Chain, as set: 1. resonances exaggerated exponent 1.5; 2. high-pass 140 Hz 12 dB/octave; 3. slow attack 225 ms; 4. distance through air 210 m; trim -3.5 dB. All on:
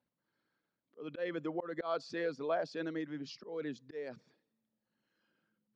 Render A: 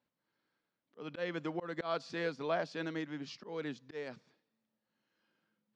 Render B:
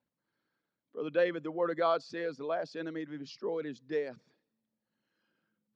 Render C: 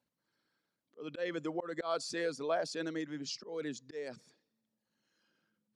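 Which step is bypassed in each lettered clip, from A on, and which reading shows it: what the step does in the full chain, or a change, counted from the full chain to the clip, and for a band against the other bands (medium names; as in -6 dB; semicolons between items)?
1, 500 Hz band -3.5 dB; 3, crest factor change +1.5 dB; 4, 4 kHz band +6.5 dB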